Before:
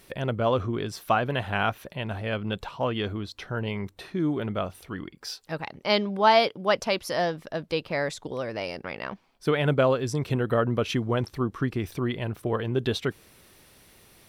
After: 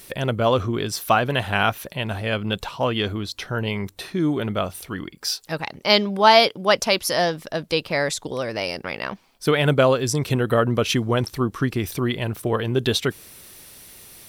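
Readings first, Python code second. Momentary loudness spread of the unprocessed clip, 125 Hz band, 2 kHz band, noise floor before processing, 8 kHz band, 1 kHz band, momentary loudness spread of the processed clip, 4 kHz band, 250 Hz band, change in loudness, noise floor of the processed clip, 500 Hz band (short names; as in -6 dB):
12 LU, +4.5 dB, +6.5 dB, -60 dBFS, +12.5 dB, +5.0 dB, 12 LU, +9.0 dB, +4.5 dB, +5.5 dB, -52 dBFS, +4.5 dB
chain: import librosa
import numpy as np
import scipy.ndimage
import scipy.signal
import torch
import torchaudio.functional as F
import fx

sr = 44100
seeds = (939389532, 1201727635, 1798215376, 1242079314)

y = fx.high_shelf(x, sr, hz=4200.0, db=11.0)
y = F.gain(torch.from_numpy(y), 4.5).numpy()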